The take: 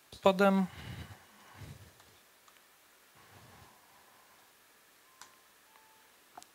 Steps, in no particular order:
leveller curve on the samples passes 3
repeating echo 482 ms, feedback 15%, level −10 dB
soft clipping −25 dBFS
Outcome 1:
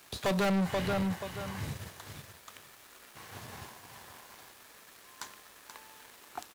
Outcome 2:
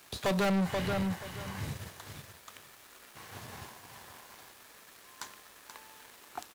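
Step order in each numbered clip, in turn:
repeating echo, then soft clipping, then leveller curve on the samples
soft clipping, then repeating echo, then leveller curve on the samples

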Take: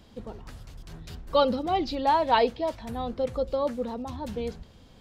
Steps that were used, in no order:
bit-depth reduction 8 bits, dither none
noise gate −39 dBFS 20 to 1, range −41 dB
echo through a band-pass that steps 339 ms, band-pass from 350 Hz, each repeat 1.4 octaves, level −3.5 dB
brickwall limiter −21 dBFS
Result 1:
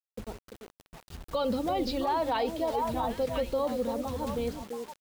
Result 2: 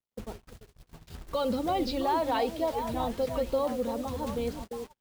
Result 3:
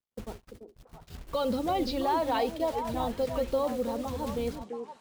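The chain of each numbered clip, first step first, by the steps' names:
noise gate, then echo through a band-pass that steps, then bit-depth reduction, then brickwall limiter
brickwall limiter, then echo through a band-pass that steps, then bit-depth reduction, then noise gate
brickwall limiter, then bit-depth reduction, then noise gate, then echo through a band-pass that steps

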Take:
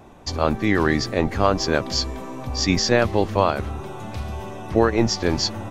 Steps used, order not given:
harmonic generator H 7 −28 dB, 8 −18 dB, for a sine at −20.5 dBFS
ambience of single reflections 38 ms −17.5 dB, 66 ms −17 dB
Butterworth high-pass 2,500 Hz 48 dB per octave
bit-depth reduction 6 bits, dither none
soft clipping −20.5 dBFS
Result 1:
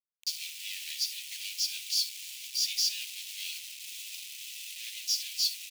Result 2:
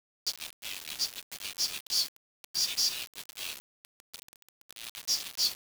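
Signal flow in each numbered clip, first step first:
harmonic generator, then ambience of single reflections, then bit-depth reduction, then soft clipping, then Butterworth high-pass
harmonic generator, then ambience of single reflections, then soft clipping, then Butterworth high-pass, then bit-depth reduction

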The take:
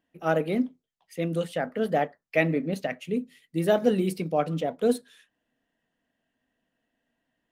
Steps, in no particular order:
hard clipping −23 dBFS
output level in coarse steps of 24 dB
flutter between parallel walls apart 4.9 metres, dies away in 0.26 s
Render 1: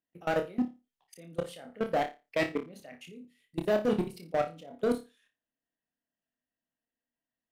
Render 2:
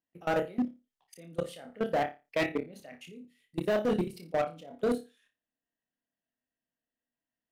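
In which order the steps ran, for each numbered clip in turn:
output level in coarse steps, then hard clipping, then flutter between parallel walls
output level in coarse steps, then flutter between parallel walls, then hard clipping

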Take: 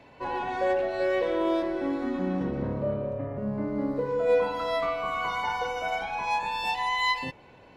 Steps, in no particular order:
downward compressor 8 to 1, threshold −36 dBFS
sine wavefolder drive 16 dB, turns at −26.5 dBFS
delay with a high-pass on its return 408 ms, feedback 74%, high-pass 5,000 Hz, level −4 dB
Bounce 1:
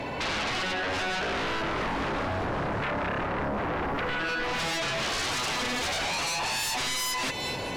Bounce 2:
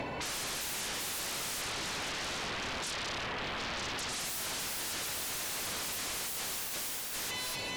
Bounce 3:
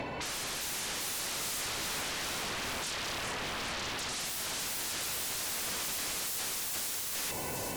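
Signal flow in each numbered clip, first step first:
downward compressor, then delay with a high-pass on its return, then sine wavefolder
delay with a high-pass on its return, then sine wavefolder, then downward compressor
sine wavefolder, then downward compressor, then delay with a high-pass on its return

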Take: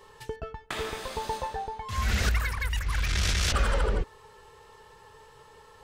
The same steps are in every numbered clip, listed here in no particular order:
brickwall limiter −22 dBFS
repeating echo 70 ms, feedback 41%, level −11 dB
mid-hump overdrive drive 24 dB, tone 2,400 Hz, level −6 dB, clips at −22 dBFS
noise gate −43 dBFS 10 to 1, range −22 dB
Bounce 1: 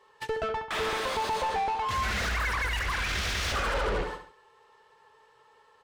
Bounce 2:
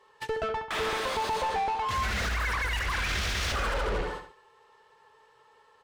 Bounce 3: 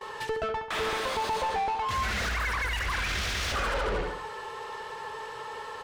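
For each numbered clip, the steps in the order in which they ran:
brickwall limiter, then noise gate, then repeating echo, then mid-hump overdrive
noise gate, then repeating echo, then mid-hump overdrive, then brickwall limiter
repeating echo, then brickwall limiter, then mid-hump overdrive, then noise gate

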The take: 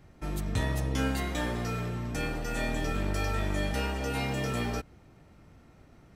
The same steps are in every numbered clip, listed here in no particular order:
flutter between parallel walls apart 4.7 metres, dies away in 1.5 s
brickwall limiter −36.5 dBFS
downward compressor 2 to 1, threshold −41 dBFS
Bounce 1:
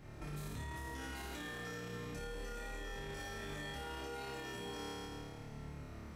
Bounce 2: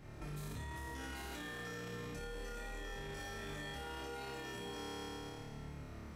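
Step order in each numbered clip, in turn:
downward compressor, then flutter between parallel walls, then brickwall limiter
flutter between parallel walls, then brickwall limiter, then downward compressor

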